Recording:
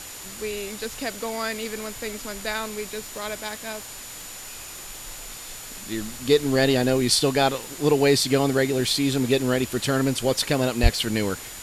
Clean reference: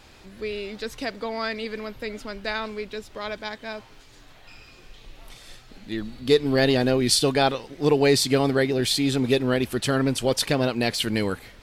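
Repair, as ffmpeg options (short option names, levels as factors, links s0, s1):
-filter_complex "[0:a]adeclick=t=4,bandreject=f=7000:w=30,asplit=3[s0][s1][s2];[s0]afade=t=out:st=10.82:d=0.02[s3];[s1]highpass=f=140:w=0.5412,highpass=f=140:w=1.3066,afade=t=in:st=10.82:d=0.02,afade=t=out:st=10.94:d=0.02[s4];[s2]afade=t=in:st=10.94:d=0.02[s5];[s3][s4][s5]amix=inputs=3:normalize=0,afwtdn=0.013"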